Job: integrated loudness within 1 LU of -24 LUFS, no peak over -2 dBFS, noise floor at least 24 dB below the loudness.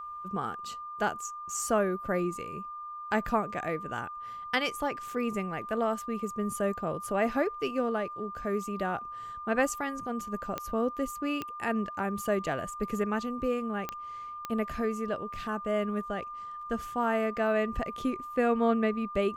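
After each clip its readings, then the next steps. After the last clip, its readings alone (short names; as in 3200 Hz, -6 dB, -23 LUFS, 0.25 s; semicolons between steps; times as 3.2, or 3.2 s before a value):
clicks 4; steady tone 1200 Hz; tone level -38 dBFS; loudness -32.0 LUFS; peak -13.5 dBFS; loudness target -24.0 LUFS
-> de-click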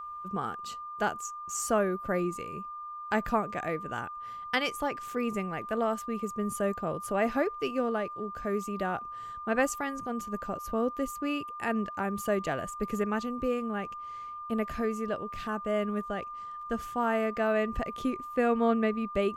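clicks 0; steady tone 1200 Hz; tone level -38 dBFS
-> notch 1200 Hz, Q 30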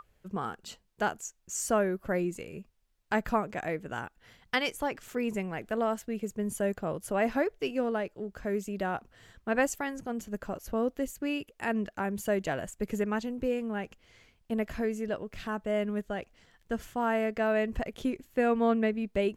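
steady tone none; loudness -32.0 LUFS; peak -14.5 dBFS; loudness target -24.0 LUFS
-> gain +8 dB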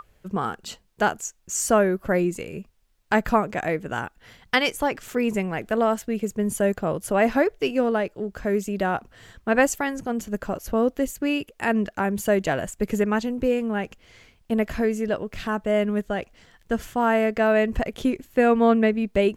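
loudness -24.0 LUFS; peak -6.5 dBFS; noise floor -61 dBFS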